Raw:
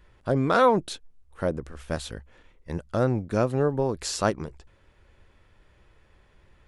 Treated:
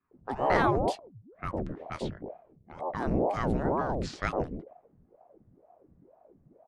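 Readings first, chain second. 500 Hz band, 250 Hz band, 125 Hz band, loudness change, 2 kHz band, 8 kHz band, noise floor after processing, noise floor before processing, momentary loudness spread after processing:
-5.5 dB, -4.0 dB, -6.0 dB, -4.5 dB, -2.0 dB, -15.5 dB, -66 dBFS, -61 dBFS, 15 LU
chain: octave divider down 1 oct, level +2 dB; level-controlled noise filter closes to 460 Hz, open at -22 dBFS; treble shelf 5.7 kHz -6 dB; bands offset in time highs, lows 110 ms, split 450 Hz; ring modulator with a swept carrier 410 Hz, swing 75%, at 2.1 Hz; trim -2 dB

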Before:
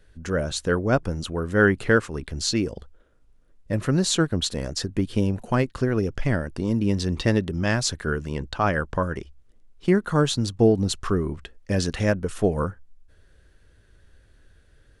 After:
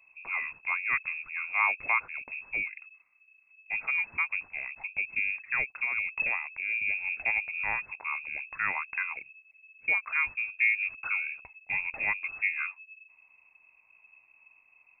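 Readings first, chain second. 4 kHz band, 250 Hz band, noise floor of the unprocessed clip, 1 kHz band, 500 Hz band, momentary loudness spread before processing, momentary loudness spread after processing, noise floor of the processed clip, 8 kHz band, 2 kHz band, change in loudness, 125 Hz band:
under -25 dB, under -35 dB, -58 dBFS, -6.5 dB, -28.5 dB, 9 LU, 10 LU, -64 dBFS, under -40 dB, +3.0 dB, -5.5 dB, under -35 dB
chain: frequency inversion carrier 2.6 kHz; trim -8.5 dB

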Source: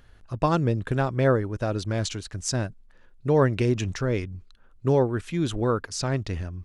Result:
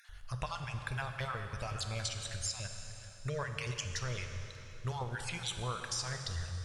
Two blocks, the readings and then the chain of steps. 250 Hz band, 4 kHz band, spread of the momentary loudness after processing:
-22.5 dB, -2.5 dB, 7 LU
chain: random holes in the spectrogram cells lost 33%; amplifier tone stack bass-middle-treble 10-0-10; compression 6:1, threshold -44 dBFS, peak gain reduction 14 dB; plate-style reverb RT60 3.7 s, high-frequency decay 0.8×, DRR 4.5 dB; trim +8 dB

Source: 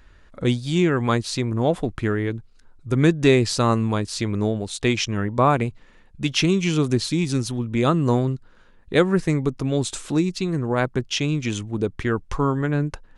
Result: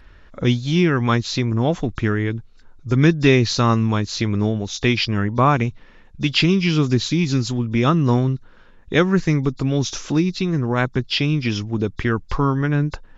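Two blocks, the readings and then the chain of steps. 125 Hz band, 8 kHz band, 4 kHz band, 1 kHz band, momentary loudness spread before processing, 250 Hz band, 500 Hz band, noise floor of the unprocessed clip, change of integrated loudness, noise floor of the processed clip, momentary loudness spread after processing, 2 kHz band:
+4.0 dB, -1.0 dB, +4.0 dB, +2.0 dB, 7 LU, +2.5 dB, 0.0 dB, -52 dBFS, +2.5 dB, -47 dBFS, 7 LU, +4.0 dB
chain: knee-point frequency compression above 3.4 kHz 1.5:1; dynamic bell 540 Hz, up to -6 dB, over -31 dBFS, Q 0.92; trim +4.5 dB

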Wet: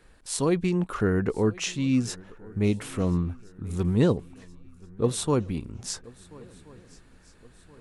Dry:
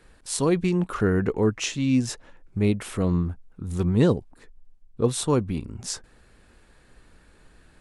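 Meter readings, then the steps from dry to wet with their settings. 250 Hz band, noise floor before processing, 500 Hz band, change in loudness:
-2.0 dB, -56 dBFS, -2.0 dB, -2.0 dB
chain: shuffle delay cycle 1375 ms, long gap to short 3:1, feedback 42%, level -23 dB; trim -2 dB

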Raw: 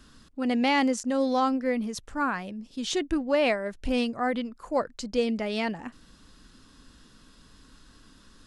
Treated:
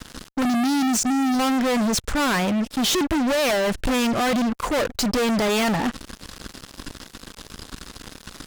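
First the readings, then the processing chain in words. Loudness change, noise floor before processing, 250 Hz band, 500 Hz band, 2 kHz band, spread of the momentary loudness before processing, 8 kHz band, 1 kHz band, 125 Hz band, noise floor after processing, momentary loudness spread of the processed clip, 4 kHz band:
+6.0 dB, -56 dBFS, +7.0 dB, +3.5 dB, +6.0 dB, 10 LU, +14.0 dB, +5.0 dB, +12.5 dB, -49 dBFS, 19 LU, +9.0 dB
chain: time-frequency box 0.43–1.40 s, 370–4100 Hz -26 dB; fuzz box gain 44 dB, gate -51 dBFS; trim -6.5 dB

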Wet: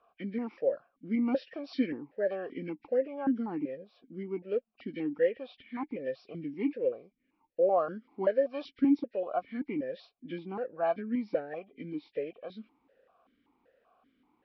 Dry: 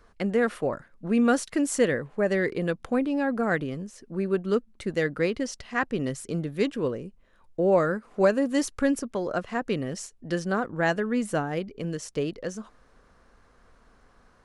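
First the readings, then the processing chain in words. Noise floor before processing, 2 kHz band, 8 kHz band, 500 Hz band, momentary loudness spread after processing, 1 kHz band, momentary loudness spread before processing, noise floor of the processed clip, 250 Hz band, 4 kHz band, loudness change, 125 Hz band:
-60 dBFS, -15.5 dB, under -35 dB, -5.0 dB, 14 LU, -6.5 dB, 10 LU, -79 dBFS, -6.0 dB, under -10 dB, -6.0 dB, -15.0 dB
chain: knee-point frequency compression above 1.5 kHz 1.5:1; stepped vowel filter 5.2 Hz; trim +4 dB

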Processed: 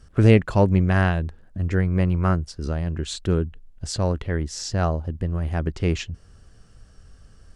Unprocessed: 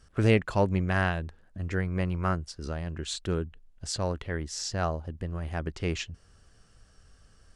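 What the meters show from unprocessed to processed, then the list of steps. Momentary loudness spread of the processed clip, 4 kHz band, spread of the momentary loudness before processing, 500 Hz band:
13 LU, +2.5 dB, 12 LU, +6.0 dB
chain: bass shelf 480 Hz +7 dB; trim +2.5 dB

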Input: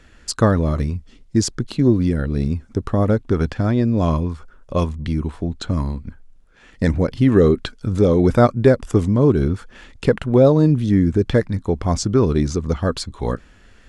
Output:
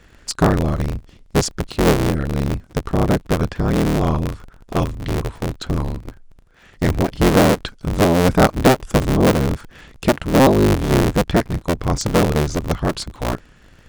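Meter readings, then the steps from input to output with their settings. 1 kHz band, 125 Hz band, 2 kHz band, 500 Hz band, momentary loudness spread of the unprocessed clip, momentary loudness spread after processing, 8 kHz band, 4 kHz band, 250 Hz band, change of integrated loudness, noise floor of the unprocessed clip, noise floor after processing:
+5.5 dB, -1.0 dB, +6.5 dB, -0.5 dB, 12 LU, 12 LU, no reading, +5.5 dB, -0.5 dB, 0.0 dB, -49 dBFS, -49 dBFS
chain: cycle switcher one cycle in 3, inverted

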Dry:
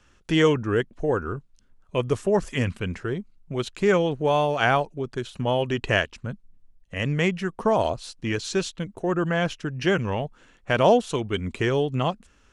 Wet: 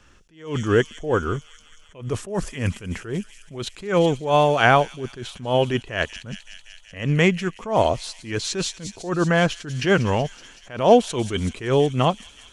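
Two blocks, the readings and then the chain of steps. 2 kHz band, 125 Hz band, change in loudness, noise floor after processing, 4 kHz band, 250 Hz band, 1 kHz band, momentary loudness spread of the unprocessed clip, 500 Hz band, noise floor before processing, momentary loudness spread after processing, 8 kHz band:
+2.5 dB, +3.0 dB, +3.0 dB, -51 dBFS, +3.0 dB, +2.0 dB, +3.5 dB, 11 LU, +2.0 dB, -59 dBFS, 16 LU, +6.0 dB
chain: feedback echo behind a high-pass 188 ms, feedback 75%, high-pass 5.3 kHz, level -5 dB; attacks held to a fixed rise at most 140 dB/s; trim +5.5 dB

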